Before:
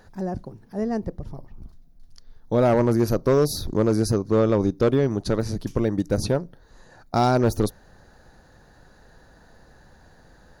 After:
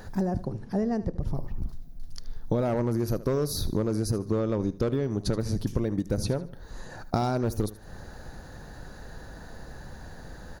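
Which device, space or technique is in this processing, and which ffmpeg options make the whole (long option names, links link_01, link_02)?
ASMR close-microphone chain: -filter_complex "[0:a]lowshelf=frequency=240:gain=4.5,acompressor=threshold=-30dB:ratio=10,highshelf=frequency=9500:gain=5.5,asettb=1/sr,asplit=3[link_01][link_02][link_03];[link_01]atrim=end=0.454[link_04];[link_02]atrim=start=0.45:end=1.2,asetpts=PTS-STARTPTS,afade=type=in:duration=0.004:curve=qsin,afade=type=out:start_time=0.746:duration=0.004:curve=qsin,lowpass=8200[link_05];[link_03]atrim=start=1.196[link_06];[link_04][link_05]acrossfade=duration=0.004:curve1=hsin:curve2=qsin[link_07];[link_07][link_06]acrossfade=duration=0.004:curve1=qsin:curve2=hsin,aecho=1:1:76|152|228:0.15|0.0479|0.0153,volume=6.5dB"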